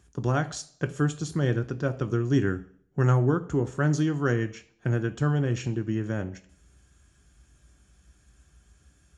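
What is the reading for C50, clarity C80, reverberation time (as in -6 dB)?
16.5 dB, 20.0 dB, 0.55 s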